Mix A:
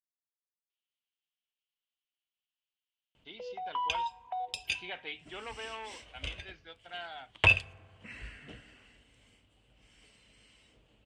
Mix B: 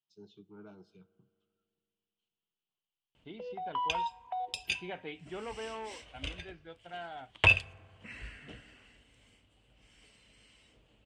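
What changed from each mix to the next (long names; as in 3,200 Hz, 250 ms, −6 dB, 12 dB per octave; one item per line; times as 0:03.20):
first voice: unmuted
second voice: add spectral tilt −4.5 dB per octave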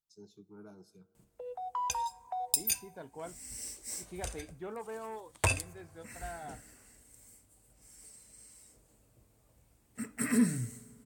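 second voice: entry −0.70 s
background: entry −2.00 s
master: remove low-pass with resonance 3,000 Hz, resonance Q 6.1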